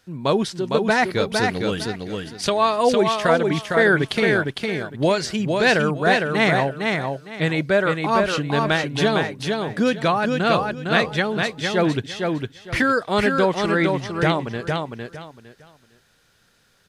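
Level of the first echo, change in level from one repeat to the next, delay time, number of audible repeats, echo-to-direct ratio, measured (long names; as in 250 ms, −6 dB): −4.0 dB, −13.0 dB, 457 ms, 3, −4.0 dB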